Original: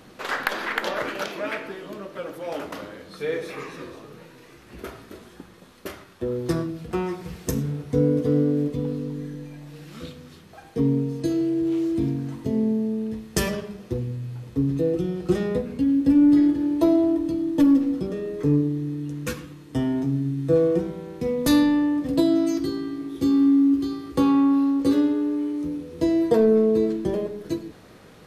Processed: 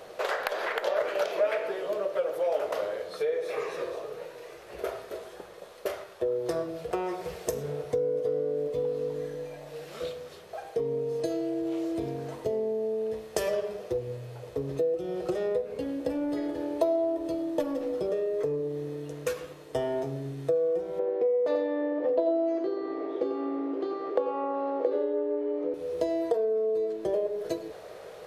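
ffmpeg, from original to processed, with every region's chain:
-filter_complex "[0:a]asettb=1/sr,asplit=3[a][b][c];[a]atrim=end=20.994[d];[b]atrim=start=20.99:end=25.74,asetpts=PTS-STARTPTS,afade=t=in:d=0.004:c=qsin,afade=t=out:st=4.746:d=0.004:c=qsin,highpass=290,lowpass=2.5k,equalizer=f=430:w=0.54:g=9,aecho=1:1:88:0.447,atrim=end_sample=209475[e];[c]atrim=start=25.736[f];[d][e]acrossfade=d=0.004:c1=hsin:c2=qsin[g];[g][f]acrossfade=d=0.004:c1=qsin:c2=hsin,lowshelf=f=340:t=q:w=3:g=-8.5,acompressor=threshold=-29dB:ratio=6,equalizer=f=630:t=o:w=0.53:g=9"

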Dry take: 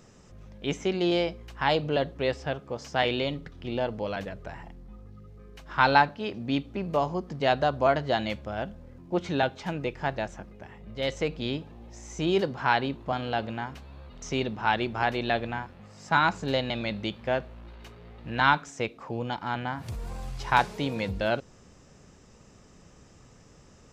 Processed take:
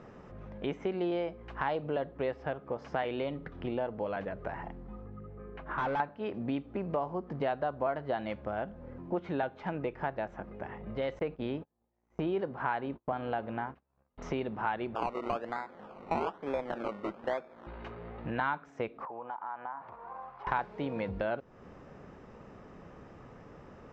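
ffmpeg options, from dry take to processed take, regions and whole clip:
-filter_complex "[0:a]asettb=1/sr,asplit=3[a][b][c];[a]atrim=end=5.064[d];[b]atrim=start=5.06:end=6,asetpts=PTS-STARTPTS,afade=t=in:d=0.004:c=qsin,afade=t=out:st=0.936:d=0.004:c=qsin,lowpass=2.6k,volume=25.5dB,asoftclip=hard,volume=-25.5dB[e];[c]atrim=start=5.996[f];[d][e]acrossfade=d=0.004:c1=hsin:c2=qsin[g];[g][f]acrossfade=d=0.004:c1=qsin:c2=hsin,asettb=1/sr,asplit=3[h][i][j];[h]atrim=end=11.194[k];[i]atrim=start=11.19:end=14.18,asetpts=PTS-STARTPTS,afade=t=in:d=0.004:c=qsin,afade=t=out:st=2.986:d=0.004:c=qsin,highshelf=f=6.4k:g=-10,agate=range=-38dB:threshold=-41dB:ratio=16:release=100:detection=peak[l];[j]atrim=start=14.176[m];[k][l]acrossfade=d=0.004:c1=hsin:c2=qsin[n];[n][m]acrossfade=d=0.004:c1=qsin:c2=hsin,asettb=1/sr,asplit=3[o][p][q];[o]atrim=end=14.954[r];[p]atrim=start=14.95:end=17.67,asetpts=PTS-STARTPTS,afade=t=in:d=0.004:c=qsin,afade=t=out:st=2.716:d=0.004:c=qsin,highpass=300,lowpass=3.5k,acrusher=samples=21:mix=1:aa=0.000001:lfo=1:lforange=12.6:lforate=1.1[s];[q]atrim=start=17.666[t];[r][s]acrossfade=d=0.004:c1=hsin:c2=qsin[u];[u][t]acrossfade=d=0.004:c1=qsin:c2=hsin,asettb=1/sr,asplit=3[v][w][x];[v]atrim=end=19.054[y];[w]atrim=start=19.05:end=20.47,asetpts=PTS-STARTPTS,afade=t=in:d=0.004:c=qsin,afade=t=out:st=1.416:d=0.004:c=qsin,bandpass=f=1k:t=q:w=2.6,acompressor=threshold=-45dB:ratio=2.5:attack=3.2:release=140:knee=1:detection=peak[z];[x]atrim=start=20.466[aa];[y][z]acrossfade=d=0.004:c1=hsin:c2=qsin[ab];[ab][aa]acrossfade=d=0.004:c1=qsin:c2=hsin,lowpass=1.6k,lowshelf=f=180:g=-10,acompressor=threshold=-42dB:ratio=3,volume=8dB"

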